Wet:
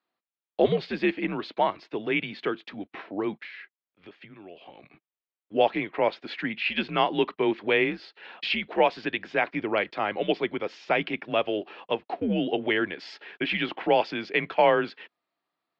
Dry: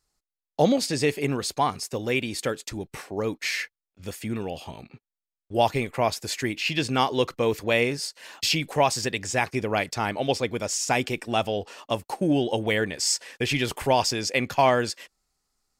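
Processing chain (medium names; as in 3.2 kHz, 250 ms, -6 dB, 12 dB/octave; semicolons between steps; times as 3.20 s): 3.41–4.83 s: compression 6:1, threshold -40 dBFS, peak gain reduction 14 dB; mistuned SSB -94 Hz 320–3600 Hz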